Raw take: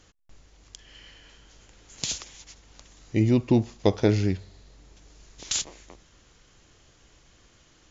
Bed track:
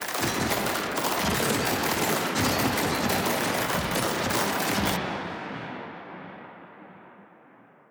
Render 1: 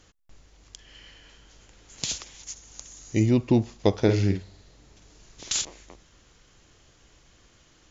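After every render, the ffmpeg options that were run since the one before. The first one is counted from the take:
ffmpeg -i in.wav -filter_complex "[0:a]asettb=1/sr,asplit=3[link_01][link_02][link_03];[link_01]atrim=end=2.434[link_04];[link_02]atrim=start=2.43:end=3.26,asetpts=PTS-STARTPTS,afade=type=in:duration=0.004:curve=qsin,afade=type=out:start_time=0.826:duration=0.004:curve=qsin,lowpass=frequency=6700:width_type=q:width=5.4[link_05];[link_03]atrim=start=3.256[link_06];[link_04][link_05]acrossfade=duration=0.004:curve1=hsin:curve2=qsin[link_07];[link_07][link_06]acrossfade=duration=0.004:curve1=qsin:curve2=hsin,asettb=1/sr,asplit=3[link_08][link_09][link_10];[link_08]atrim=end=3.994[link_11];[link_09]atrim=start=3.99:end=5.65,asetpts=PTS-STARTPTS,afade=type=in:duration=0.004:curve=qsin,afade=type=out:start_time=1.656:duration=0.004:curve=qsin,asplit=2[link_12][link_13];[link_13]adelay=50,volume=-7dB[link_14];[link_12][link_14]amix=inputs=2:normalize=0,atrim=end_sample=73206[link_15];[link_10]atrim=start=5.646[link_16];[link_11][link_15]acrossfade=duration=0.004:curve1=hsin:curve2=qsin[link_17];[link_17][link_16]acrossfade=duration=0.004:curve1=qsin:curve2=hsin" out.wav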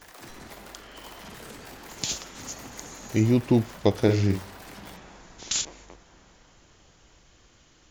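ffmpeg -i in.wav -i bed.wav -filter_complex "[1:a]volume=-18.5dB[link_01];[0:a][link_01]amix=inputs=2:normalize=0" out.wav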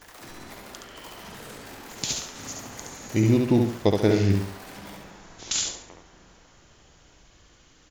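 ffmpeg -i in.wav -af "aecho=1:1:70|140|210|280:0.631|0.221|0.0773|0.0271" out.wav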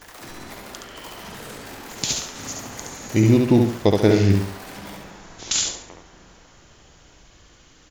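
ffmpeg -i in.wav -af "volume=4.5dB,alimiter=limit=-2dB:level=0:latency=1" out.wav

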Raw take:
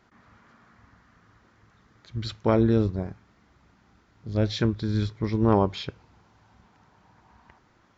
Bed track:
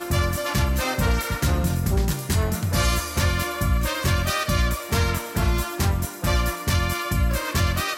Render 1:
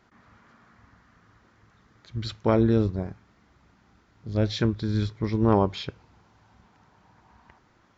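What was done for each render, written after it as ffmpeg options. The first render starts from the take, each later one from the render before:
ffmpeg -i in.wav -af anull out.wav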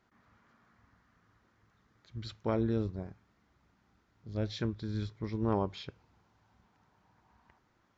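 ffmpeg -i in.wav -af "volume=-10dB" out.wav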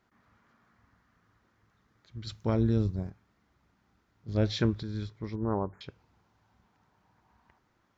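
ffmpeg -i in.wav -filter_complex "[0:a]asettb=1/sr,asplit=3[link_01][link_02][link_03];[link_01]atrim=end=2.274[link_04];[link_02]atrim=start=2.27:end=3.1,asetpts=PTS-STARTPTS,afade=type=in:duration=0.004:curve=qsin,afade=type=out:start_time=0.826:duration=0.004:curve=qsin,bass=frequency=250:gain=8,treble=frequency=4000:gain=9[link_05];[link_03]atrim=start=3.096[link_06];[link_04][link_05]acrossfade=duration=0.004:curve1=hsin:curve2=qsin[link_07];[link_07][link_06]acrossfade=duration=0.004:curve1=qsin:curve2=hsin,asettb=1/sr,asplit=3[link_08][link_09][link_10];[link_08]atrim=end=4.284[link_11];[link_09]atrim=start=4.28:end=4.83,asetpts=PTS-STARTPTS,afade=type=in:duration=0.004:curve=qsin,afade=type=out:start_time=0.546:duration=0.004:curve=qsin,acontrast=90[link_12];[link_10]atrim=start=4.826[link_13];[link_11][link_12]acrossfade=duration=0.004:curve1=hsin:curve2=qsin[link_14];[link_14][link_13]acrossfade=duration=0.004:curve1=qsin:curve2=hsin,asettb=1/sr,asplit=3[link_15][link_16][link_17];[link_15]atrim=end=5.354[link_18];[link_16]atrim=start=5.35:end=5.81,asetpts=PTS-STARTPTS,afade=type=in:duration=0.004:curve=qsin,afade=type=out:start_time=0.456:duration=0.004:curve=qsin,asuperstop=centerf=4000:order=12:qfactor=0.61[link_19];[link_17]atrim=start=5.806[link_20];[link_18][link_19]acrossfade=duration=0.004:curve1=hsin:curve2=qsin[link_21];[link_21][link_20]acrossfade=duration=0.004:curve1=qsin:curve2=hsin" out.wav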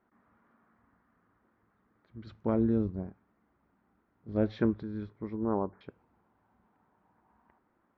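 ffmpeg -i in.wav -af "lowpass=1500,lowshelf=frequency=170:width_type=q:width=1.5:gain=-6" out.wav

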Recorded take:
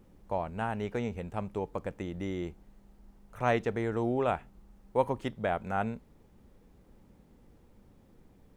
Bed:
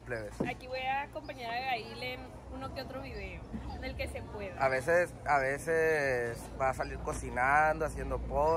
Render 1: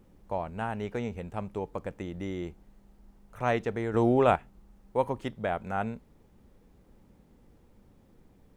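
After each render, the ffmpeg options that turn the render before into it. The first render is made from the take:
ffmpeg -i in.wav -filter_complex "[0:a]asplit=3[link_01][link_02][link_03];[link_01]atrim=end=3.942[link_04];[link_02]atrim=start=3.938:end=4.362,asetpts=PTS-STARTPTS,volume=6.5dB[link_05];[link_03]atrim=start=4.358[link_06];[link_04][link_05]acrossfade=duration=0.004:curve1=hsin:curve2=hsin[link_07];[link_07][link_06]acrossfade=duration=0.004:curve1=hsin:curve2=hsin" out.wav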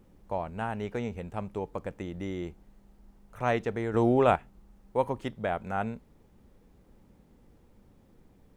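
ffmpeg -i in.wav -af anull out.wav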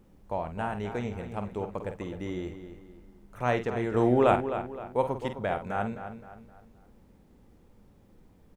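ffmpeg -i in.wav -filter_complex "[0:a]asplit=2[link_01][link_02];[link_02]adelay=49,volume=-9dB[link_03];[link_01][link_03]amix=inputs=2:normalize=0,asplit=2[link_04][link_05];[link_05]adelay=260,lowpass=frequency=4000:poles=1,volume=-10dB,asplit=2[link_06][link_07];[link_07]adelay=260,lowpass=frequency=4000:poles=1,volume=0.4,asplit=2[link_08][link_09];[link_09]adelay=260,lowpass=frequency=4000:poles=1,volume=0.4,asplit=2[link_10][link_11];[link_11]adelay=260,lowpass=frequency=4000:poles=1,volume=0.4[link_12];[link_04][link_06][link_08][link_10][link_12]amix=inputs=5:normalize=0" out.wav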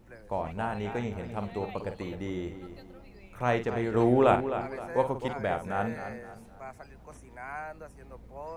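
ffmpeg -i in.wav -i bed.wav -filter_complex "[1:a]volume=-12.5dB[link_01];[0:a][link_01]amix=inputs=2:normalize=0" out.wav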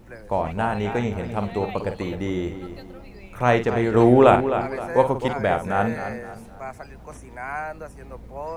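ffmpeg -i in.wav -af "volume=8.5dB,alimiter=limit=-2dB:level=0:latency=1" out.wav

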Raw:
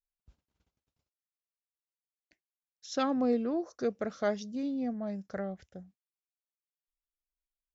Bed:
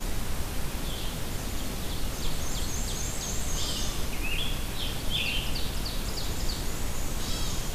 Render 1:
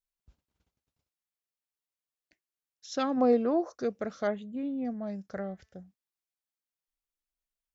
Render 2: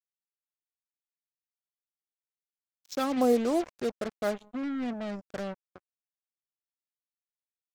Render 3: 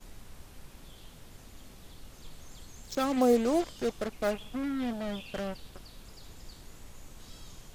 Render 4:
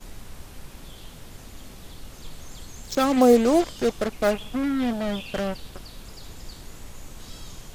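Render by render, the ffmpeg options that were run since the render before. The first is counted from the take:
ffmpeg -i in.wav -filter_complex "[0:a]asplit=3[link_01][link_02][link_03];[link_01]afade=type=out:start_time=3.16:duration=0.02[link_04];[link_02]equalizer=frequency=810:width_type=o:width=2.2:gain=9,afade=type=in:start_time=3.16:duration=0.02,afade=type=out:start_time=3.73:duration=0.02[link_05];[link_03]afade=type=in:start_time=3.73:duration=0.02[link_06];[link_04][link_05][link_06]amix=inputs=3:normalize=0,asettb=1/sr,asplit=3[link_07][link_08][link_09];[link_07]atrim=end=4.274[link_10];[link_08]atrim=start=4.27:end=4.85,asetpts=PTS-STARTPTS,afade=type=in:duration=0.004:curve=qsin,afade=type=out:start_time=0.576:duration=0.004:curve=qsin,asuperstop=centerf=5400:order=4:qfactor=0.9[link_11];[link_09]atrim=start=4.846[link_12];[link_10][link_11]acrossfade=duration=0.004:curve1=hsin:curve2=qsin[link_13];[link_13][link_12]acrossfade=duration=0.004:curve1=qsin:curve2=hsin,asettb=1/sr,asplit=3[link_14][link_15][link_16];[link_14]atrim=end=5.354[link_17];[link_15]atrim=start=5.35:end=5.77,asetpts=PTS-STARTPTS,afade=type=in:duration=0.004:curve=qsin,afade=type=out:start_time=0.416:duration=0.004:curve=qsin,bandreject=frequency=219.7:width_type=h:width=4,bandreject=frequency=439.4:width_type=h:width=4,bandreject=frequency=659.1:width_type=h:width=4,bandreject=frequency=878.8:width_type=h:width=4,bandreject=frequency=1098.5:width_type=h:width=4,bandreject=frequency=1318.2:width_type=h:width=4,bandreject=frequency=1537.9:width_type=h:width=4,bandreject=frequency=1757.6:width_type=h:width=4,bandreject=frequency=1977.3:width_type=h:width=4,bandreject=frequency=2197:width_type=h:width=4,bandreject=frequency=2416.7:width_type=h:width=4,bandreject=frequency=2636.4:width_type=h:width=4,bandreject=frequency=2856.1:width_type=h:width=4,bandreject=frequency=3075.8:width_type=h:width=4,bandreject=frequency=3295.5:width_type=h:width=4,bandreject=frequency=3515.2:width_type=h:width=4,bandreject=frequency=3734.9:width_type=h:width=4,bandreject=frequency=3954.6:width_type=h:width=4,bandreject=frequency=4174.3:width_type=h:width=4,bandreject=frequency=4394:width_type=h:width=4,bandreject=frequency=4613.7:width_type=h:width=4,bandreject=frequency=4833.4:width_type=h:width=4,bandreject=frequency=5053.1:width_type=h:width=4,bandreject=frequency=5272.8:width_type=h:width=4,bandreject=frequency=5492.5:width_type=h:width=4,bandreject=frequency=5712.2:width_type=h:width=4,bandreject=frequency=5931.9:width_type=h:width=4,bandreject=frequency=6151.6:width_type=h:width=4,bandreject=frequency=6371.3:width_type=h:width=4[link_18];[link_16]atrim=start=5.766[link_19];[link_17][link_18]acrossfade=duration=0.004:curve1=hsin:curve2=qsin[link_20];[link_20][link_19]acrossfade=duration=0.004:curve1=qsin:curve2=hsin" out.wav
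ffmpeg -i in.wav -af "acrusher=bits=5:mix=0:aa=0.5" out.wav
ffmpeg -i in.wav -i bed.wav -filter_complex "[1:a]volume=-18dB[link_01];[0:a][link_01]amix=inputs=2:normalize=0" out.wav
ffmpeg -i in.wav -af "volume=8dB" out.wav

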